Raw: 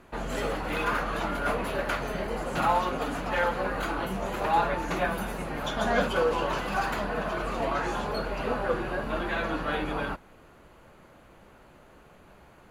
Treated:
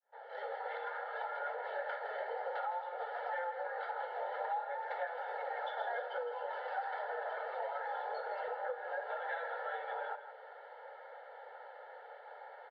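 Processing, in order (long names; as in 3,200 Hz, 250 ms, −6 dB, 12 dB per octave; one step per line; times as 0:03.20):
fade in at the beginning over 1.93 s
Butterworth high-pass 470 Hz 48 dB per octave
high-shelf EQ 4,000 Hz −8 dB
comb filter 2.3 ms, depth 53%
downward compressor 10 to 1, threshold −42 dBFS, peak gain reduction 24 dB
high-frequency loss of the air 410 metres
phaser with its sweep stopped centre 1,700 Hz, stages 8
single-tap delay 162 ms −10.5 dB
level +9.5 dB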